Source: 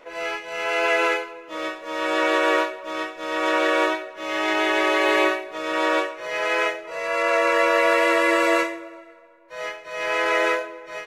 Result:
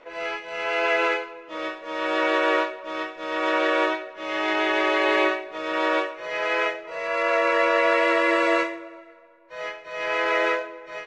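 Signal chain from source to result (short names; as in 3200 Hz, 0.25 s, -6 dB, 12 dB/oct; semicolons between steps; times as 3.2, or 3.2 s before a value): LPF 4900 Hz 12 dB/oct; gain -1.5 dB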